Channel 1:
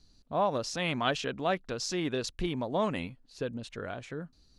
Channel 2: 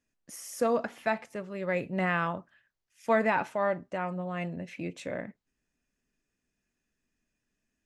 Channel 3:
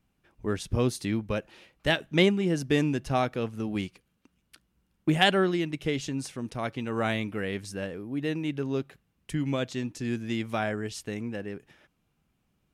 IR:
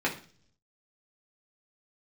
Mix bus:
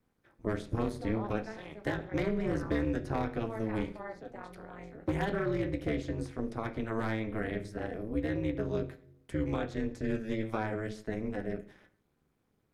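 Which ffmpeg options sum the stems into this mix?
-filter_complex "[0:a]adelay=800,volume=-14.5dB,asplit=3[link_01][link_02][link_03];[link_01]atrim=end=1.73,asetpts=PTS-STARTPTS,afade=type=out:start_time=1.726:duration=0.004:curve=hsin[link_04];[link_02]atrim=start=1.73:end=3.82,asetpts=PTS-STARTPTS,volume=0[link_05];[link_03]atrim=start=3.82,asetpts=PTS-STARTPTS,afade=type=in:duration=0.004:curve=hsin[link_06];[link_04][link_05][link_06]concat=n=3:v=0:a=1,asplit=2[link_07][link_08];[link_08]volume=-9.5dB[link_09];[1:a]adelay=400,volume=-12.5dB,asplit=2[link_10][link_11];[link_11]volume=-12.5dB[link_12];[2:a]volume=20.5dB,asoftclip=hard,volume=-20.5dB,volume=-2.5dB,asplit=3[link_13][link_14][link_15];[link_14]volume=-8.5dB[link_16];[link_15]apad=whole_len=364122[link_17];[link_10][link_17]sidechaincompress=threshold=-37dB:ratio=8:attack=16:release=308[link_18];[3:a]atrim=start_sample=2205[link_19];[link_09][link_12][link_16]amix=inputs=3:normalize=0[link_20];[link_20][link_19]afir=irnorm=-1:irlink=0[link_21];[link_07][link_18][link_13][link_21]amix=inputs=4:normalize=0,equalizer=frequency=2700:width=5.6:gain=-10.5,acrossover=split=450|950|2700[link_22][link_23][link_24][link_25];[link_22]acompressor=threshold=-26dB:ratio=4[link_26];[link_23]acompressor=threshold=-39dB:ratio=4[link_27];[link_24]acompressor=threshold=-35dB:ratio=4[link_28];[link_25]acompressor=threshold=-54dB:ratio=4[link_29];[link_26][link_27][link_28][link_29]amix=inputs=4:normalize=0,tremolo=f=220:d=0.974"

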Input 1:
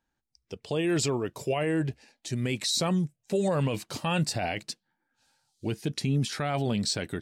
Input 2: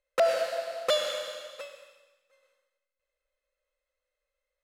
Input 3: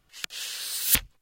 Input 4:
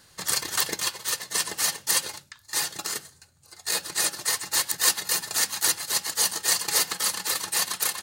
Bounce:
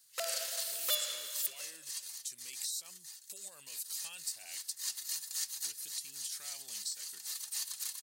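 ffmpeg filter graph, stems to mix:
ffmpeg -i stem1.wav -i stem2.wav -i stem3.wav -i stem4.wav -filter_complex "[0:a]aemphasis=mode=production:type=75kf,volume=-8dB,asplit=2[link_01][link_02];[1:a]volume=2dB[link_03];[2:a]volume=-5dB,asplit=2[link_04][link_05];[link_05]volume=-12.5dB[link_06];[3:a]acrossover=split=6700[link_07][link_08];[link_08]acompressor=threshold=-37dB:ratio=4:attack=1:release=60[link_09];[link_07][link_09]amix=inputs=2:normalize=0,bass=frequency=250:gain=14,treble=frequency=4000:gain=5,volume=-11dB,asplit=2[link_10][link_11];[link_11]volume=-11dB[link_12];[link_02]apad=whole_len=353705[link_13];[link_10][link_13]sidechaincompress=threshold=-41dB:ratio=5:attack=32:release=354[link_14];[link_01][link_04]amix=inputs=2:normalize=0,acompressor=threshold=-35dB:ratio=6,volume=0dB[link_15];[link_06][link_12]amix=inputs=2:normalize=0,aecho=0:1:514:1[link_16];[link_03][link_14][link_15][link_16]amix=inputs=4:normalize=0,aderivative" out.wav

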